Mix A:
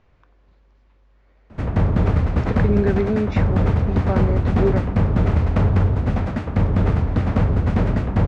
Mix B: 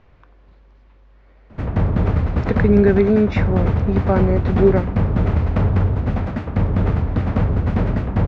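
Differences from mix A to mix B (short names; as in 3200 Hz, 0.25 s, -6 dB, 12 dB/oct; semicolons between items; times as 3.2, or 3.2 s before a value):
speech +6.5 dB; master: add air absorption 74 m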